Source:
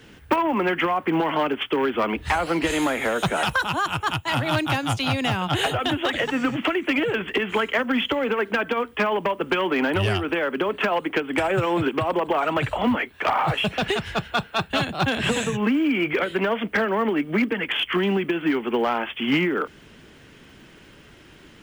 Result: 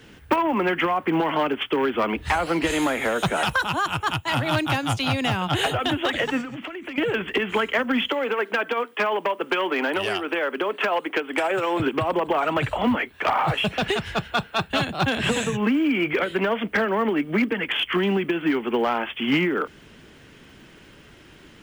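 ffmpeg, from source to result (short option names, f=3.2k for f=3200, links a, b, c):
-filter_complex "[0:a]asettb=1/sr,asplit=3[a][b][c];[a]atrim=end=6.414[d];[b]atrim=start=6.41:end=6.98,asetpts=PTS-STARTPTS,afade=t=in:d=0.004:c=qsin,afade=t=out:st=0.566:d=0.004:c=qsin,acompressor=threshold=-30dB:ratio=12:attack=3.2:release=140:knee=1:detection=peak[e];[c]atrim=start=6.976[f];[d][e]acrossfade=d=0.004:c1=hsin:c2=qsin[g];[g][f]acrossfade=d=0.004:c1=qsin:c2=hsin,asettb=1/sr,asplit=3[h][i][j];[h]atrim=end=8.104[k];[i]atrim=start=8.1:end=11.8,asetpts=PTS-STARTPTS,afade=t=in:d=0.004:c=qsin,afade=t=out:st=3.696:d=0.004:c=qsin,highpass=330[l];[j]atrim=start=11.796[m];[k][l]acrossfade=d=0.004:c1=hsin:c2=qsin[n];[n][m]acrossfade=d=0.004:c1=qsin:c2=hsin"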